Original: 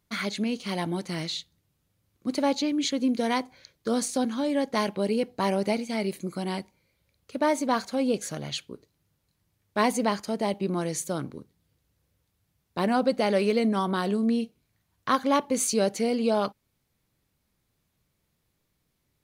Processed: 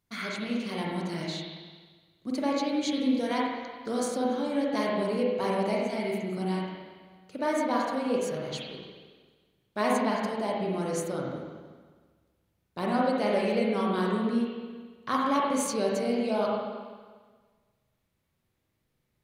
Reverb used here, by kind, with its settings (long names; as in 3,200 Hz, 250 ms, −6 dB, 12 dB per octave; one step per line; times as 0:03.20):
spring reverb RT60 1.5 s, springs 38/46/54 ms, chirp 55 ms, DRR −3.5 dB
level −6.5 dB